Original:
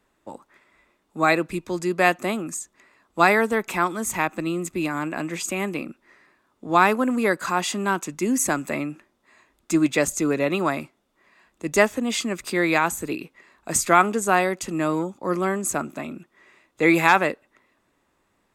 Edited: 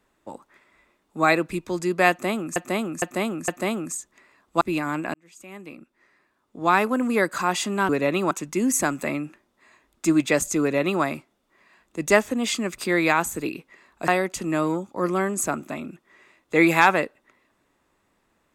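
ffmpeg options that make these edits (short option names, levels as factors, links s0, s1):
-filter_complex "[0:a]asplit=9[s0][s1][s2][s3][s4][s5][s6][s7][s8];[s0]atrim=end=2.562[s9];[s1]atrim=start=2.098:end=2.562[s10];[s2]atrim=start=2.098:end=2.562[s11];[s3]atrim=start=2.098:end=3.232[s12];[s4]atrim=start=4.688:end=5.22,asetpts=PTS-STARTPTS,afade=t=out:st=0.528:d=0.004:c=hsin[s13];[s5]atrim=start=5.22:end=7.972,asetpts=PTS-STARTPTS,afade=t=in:d=2.08[s14];[s6]atrim=start=10.268:end=10.692[s15];[s7]atrim=start=7.968:end=13.742[s16];[s8]atrim=start=14.348[s17];[s9][s10]acrossfade=d=0.004:c1=hsin:c2=hsin[s18];[s18][s11]acrossfade=d=0.004:c1=hsin:c2=hsin[s19];[s19][s12]acrossfade=d=0.004:c1=hsin:c2=hsin[s20];[s13][s14]concat=n=2:v=0:a=1[s21];[s20][s21]acrossfade=d=0.004:c1=hsin:c2=hsin[s22];[s22][s15]acrossfade=d=0.004:c1=hsin:c2=hsin[s23];[s23][s16]acrossfade=d=0.004:c1=hsin:c2=hsin[s24];[s24][s17]acrossfade=d=0.004:c1=hsin:c2=hsin"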